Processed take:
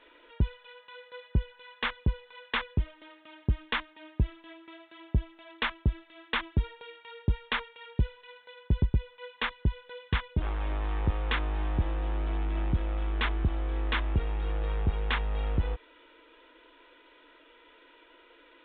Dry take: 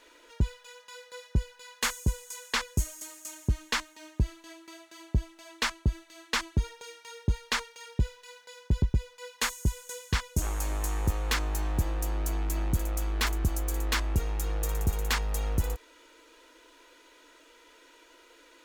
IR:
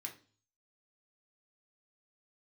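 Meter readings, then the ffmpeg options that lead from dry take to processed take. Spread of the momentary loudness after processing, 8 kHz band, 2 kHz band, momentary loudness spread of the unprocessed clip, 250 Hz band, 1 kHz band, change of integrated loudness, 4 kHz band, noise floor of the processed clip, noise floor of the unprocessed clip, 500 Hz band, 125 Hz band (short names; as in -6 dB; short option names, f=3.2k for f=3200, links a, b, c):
17 LU, under -40 dB, 0.0 dB, 16 LU, 0.0 dB, 0.0 dB, -0.5 dB, -3.0 dB, -59 dBFS, -58 dBFS, 0.0 dB, 0.0 dB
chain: -af "aresample=8000,aresample=44100"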